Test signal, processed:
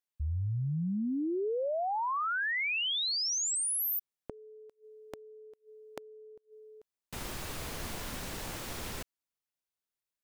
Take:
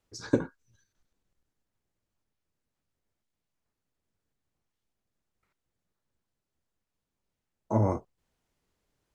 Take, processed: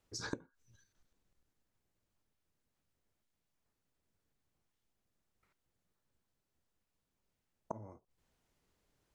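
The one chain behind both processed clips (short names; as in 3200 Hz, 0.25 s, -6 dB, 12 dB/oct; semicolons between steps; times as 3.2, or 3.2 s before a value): flipped gate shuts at -26 dBFS, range -26 dB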